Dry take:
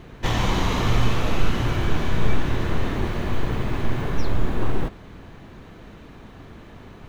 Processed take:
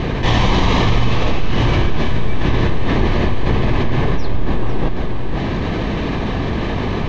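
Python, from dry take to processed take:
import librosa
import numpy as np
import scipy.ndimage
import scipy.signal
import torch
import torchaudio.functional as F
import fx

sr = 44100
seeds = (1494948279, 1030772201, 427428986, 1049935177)

p1 = scipy.signal.sosfilt(scipy.signal.butter(4, 5500.0, 'lowpass', fs=sr, output='sos'), x)
p2 = fx.notch(p1, sr, hz=1400.0, q=5.5)
p3 = p2 + fx.echo_single(p2, sr, ms=497, db=-12.5, dry=0)
y = fx.env_flatten(p3, sr, amount_pct=70)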